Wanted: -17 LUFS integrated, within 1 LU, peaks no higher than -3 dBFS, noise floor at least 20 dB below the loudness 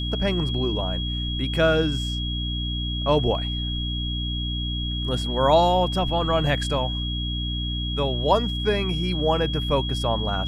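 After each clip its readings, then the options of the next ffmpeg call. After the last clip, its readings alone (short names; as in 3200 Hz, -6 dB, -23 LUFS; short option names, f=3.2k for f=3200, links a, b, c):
hum 60 Hz; harmonics up to 300 Hz; hum level -26 dBFS; steady tone 3300 Hz; tone level -30 dBFS; loudness -24.0 LUFS; peak -6.0 dBFS; loudness target -17.0 LUFS
-> -af "bandreject=f=60:t=h:w=6,bandreject=f=120:t=h:w=6,bandreject=f=180:t=h:w=6,bandreject=f=240:t=h:w=6,bandreject=f=300:t=h:w=6"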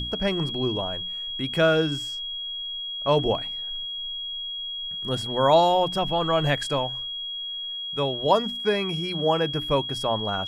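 hum none; steady tone 3300 Hz; tone level -30 dBFS
-> -af "bandreject=f=3.3k:w=30"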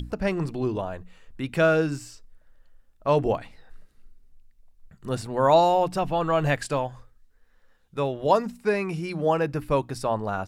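steady tone none; loudness -25.0 LUFS; peak -6.0 dBFS; loudness target -17.0 LUFS
-> -af "volume=8dB,alimiter=limit=-3dB:level=0:latency=1"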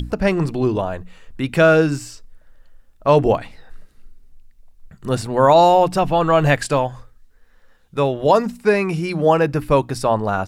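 loudness -17.5 LUFS; peak -3.0 dBFS; noise floor -51 dBFS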